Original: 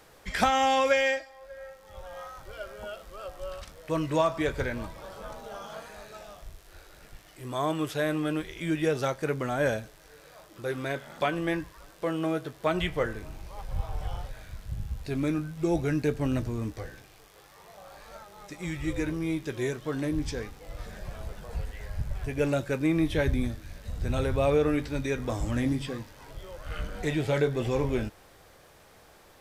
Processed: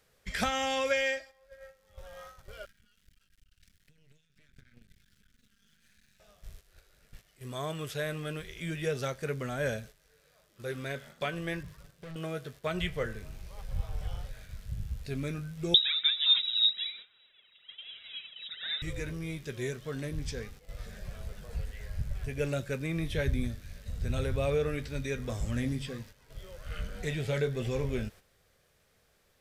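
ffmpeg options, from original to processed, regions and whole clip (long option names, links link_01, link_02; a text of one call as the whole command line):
ffmpeg -i in.wav -filter_complex "[0:a]asettb=1/sr,asplit=3[link_01][link_02][link_03];[link_01]atrim=end=2.654[link_04];[link_02]atrim=start=2.65:end=6.2,asetpts=PTS-STARTPTS,afade=type=in:duration=0.004:curve=qsin,afade=type=out:start_time=3.546:duration=0.004:curve=qsin,acompressor=threshold=-40dB:ratio=16:attack=3.2:release=140:knee=1:detection=peak,asuperstop=centerf=670:order=20:qfactor=0.58,aeval=exprs='max(val(0),0)':channel_layout=same[link_05];[link_03]atrim=start=6.196[link_06];[link_04][link_05]acrossfade=duration=0.004:curve1=hsin:curve2=qsin[link_07];[link_07][link_06]acrossfade=duration=0.004:curve1=qsin:curve2=hsin,asettb=1/sr,asplit=3[link_08][link_09][link_10];[link_08]atrim=end=11.634[link_11];[link_09]atrim=start=11.63:end=12.16,asetpts=PTS-STARTPTS,afade=type=in:duration=0.004:curve=qsin,afade=type=out:start_time=0.526:duration=0.004:curve=qsin,acompressor=threshold=-32dB:ratio=4:attack=3.2:release=140:knee=1:detection=peak,equalizer=frequency=130:width=1.1:gain=15,asoftclip=type=hard:threshold=-37dB[link_12];[link_10]atrim=start=12.156[link_13];[link_11][link_12]acrossfade=duration=0.004:curve1=hsin:curve2=qsin[link_14];[link_14][link_13]acrossfade=duration=0.004:curve1=qsin:curve2=hsin,asettb=1/sr,asplit=3[link_15][link_16][link_17];[link_15]atrim=end=15.744[link_18];[link_16]atrim=start=15.74:end=18.82,asetpts=PTS-STARTPTS,afade=type=in:duration=0.004:curve=qsin,afade=type=out:start_time=3.076:duration=0.004:curve=qsin,aphaser=in_gain=1:out_gain=1:delay=5:decay=0.77:speed=1.1:type=triangular,lowpass=frequency=3300:width_type=q:width=0.5098,lowpass=frequency=3300:width_type=q:width=0.6013,lowpass=frequency=3300:width_type=q:width=0.9,lowpass=frequency=3300:width_type=q:width=2.563,afreqshift=-3900[link_19];[link_17]atrim=start=18.816[link_20];[link_18][link_19]acrossfade=duration=0.004:curve1=hsin:curve2=qsin[link_21];[link_21][link_20]acrossfade=duration=0.004:curve1=qsin:curve2=hsin,equalizer=frequency=880:width_type=o:width=1:gain=-9.5,agate=range=-9dB:threshold=-46dB:ratio=16:detection=peak,equalizer=frequency=310:width_type=o:width=0.23:gain=-14,volume=-2dB" out.wav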